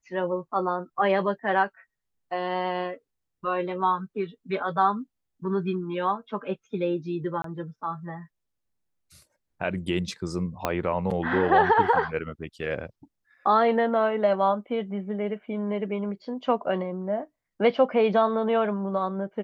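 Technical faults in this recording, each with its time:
0:07.42–0:07.44: drop-out 23 ms
0:10.65: click −10 dBFS

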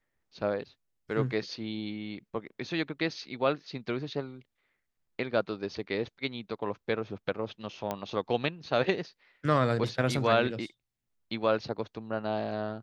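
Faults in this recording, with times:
0:07.91: click −18 dBFS

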